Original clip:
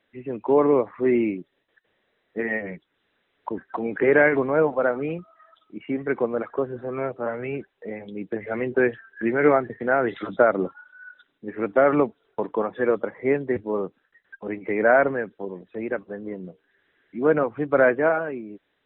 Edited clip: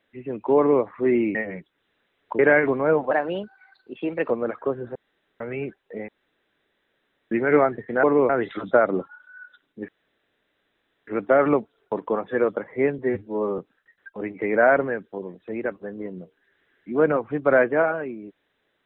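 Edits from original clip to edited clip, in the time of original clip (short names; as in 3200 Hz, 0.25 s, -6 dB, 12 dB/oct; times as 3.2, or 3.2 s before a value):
0.57–0.83 copy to 9.95
1.35–2.51 cut
3.55–4.08 cut
4.8–6.22 speed 119%
6.87–7.32 room tone
8–9.23 room tone
11.54 insert room tone 1.19 s
13.45–13.85 stretch 1.5×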